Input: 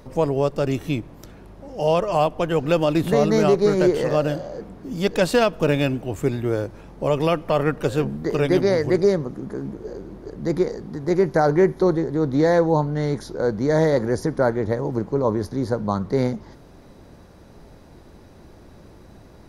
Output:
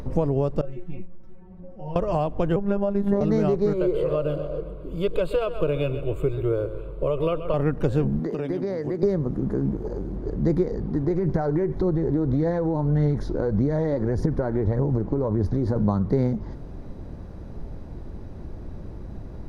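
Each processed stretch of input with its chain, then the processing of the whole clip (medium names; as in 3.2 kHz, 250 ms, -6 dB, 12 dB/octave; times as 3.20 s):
0.61–1.96 s: tone controls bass +3 dB, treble -15 dB + inharmonic resonator 180 Hz, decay 0.26 s, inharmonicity 0.002 + three-phase chorus
2.56–3.21 s: resonant high shelf 1.9 kHz -9 dB, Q 1.5 + band-stop 1.2 kHz, Q 11 + robot voice 200 Hz
3.73–7.54 s: peaking EQ 86 Hz -11.5 dB 0.99 oct + static phaser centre 1.2 kHz, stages 8 + feedback delay 129 ms, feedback 50%, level -14.5 dB
8.19–9.03 s: high-pass 160 Hz 24 dB/octave + compression 5:1, threshold -29 dBFS
9.76–10.16 s: treble shelf 8.4 kHz +11 dB + transformer saturation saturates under 310 Hz
10.71–15.76 s: treble shelf 8.6 kHz -10 dB + compression 5:1, threshold -23 dBFS + phaser 1.7 Hz, delay 3.7 ms, feedback 31%
whole clip: compression 4:1, threshold -24 dBFS; tilt EQ -3 dB/octave; upward compressor, threshold -34 dBFS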